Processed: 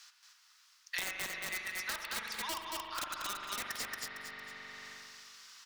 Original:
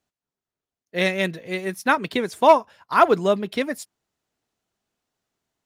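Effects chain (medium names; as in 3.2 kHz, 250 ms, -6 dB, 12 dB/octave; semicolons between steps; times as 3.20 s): steep high-pass 1.1 kHz 36 dB/octave; treble shelf 8.2 kHz -6.5 dB; harmonic-percussive split percussive -4 dB; peaking EQ 5.1 kHz +11 dB 0.82 oct; transient shaper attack +4 dB, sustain -3 dB; reverse; compression 20:1, threshold -30 dBFS, peak gain reduction 17 dB; reverse; integer overflow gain 27 dB; feedback delay 228 ms, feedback 18%, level -3.5 dB; on a send at -4 dB: reverberation RT60 1.8 s, pre-delay 41 ms; on the sum: three bands compressed up and down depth 100%; trim -4.5 dB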